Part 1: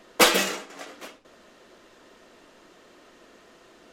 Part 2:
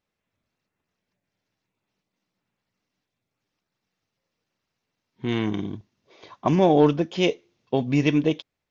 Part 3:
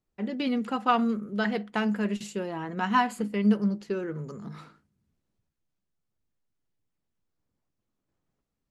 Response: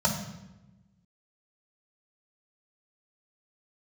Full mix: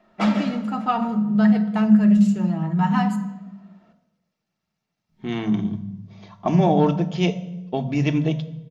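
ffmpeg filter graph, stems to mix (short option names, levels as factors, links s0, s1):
-filter_complex "[0:a]lowpass=2900,volume=0.335,asplit=2[s0][s1];[s1]volume=0.251[s2];[1:a]volume=0.794,asplit=2[s3][s4];[s4]volume=0.133[s5];[2:a]lowshelf=f=190:g=9,aecho=1:1:6.5:0.41,volume=0.75,asplit=3[s6][s7][s8];[s6]atrim=end=3.16,asetpts=PTS-STARTPTS,afade=t=out:st=3.156:d=0.004:c=hsin[s9];[s7]atrim=start=3.16:end=5.09,asetpts=PTS-STARTPTS,volume=0[s10];[s8]atrim=start=5.09,asetpts=PTS-STARTPTS,afade=t=in:d=0.004:c=hsin[s11];[s9][s10][s11]concat=n=3:v=0:a=1,asplit=2[s12][s13];[s13]volume=0.211[s14];[3:a]atrim=start_sample=2205[s15];[s2][s5][s14]amix=inputs=3:normalize=0[s16];[s16][s15]afir=irnorm=-1:irlink=0[s17];[s0][s3][s12][s17]amix=inputs=4:normalize=0"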